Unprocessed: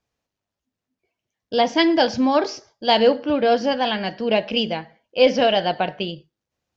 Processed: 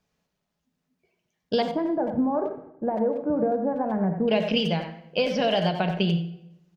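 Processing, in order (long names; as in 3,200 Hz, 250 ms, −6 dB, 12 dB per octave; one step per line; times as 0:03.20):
parametric band 170 Hz +14.5 dB 0.24 octaves
downward compressor 10 to 1, threshold −23 dBFS, peak gain reduction 13.5 dB
0:01.62–0:04.28: Gaussian smoothing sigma 7.6 samples
far-end echo of a speakerphone 90 ms, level −7 dB
convolution reverb RT60 0.90 s, pre-delay 5 ms, DRR 9.5 dB
level +2.5 dB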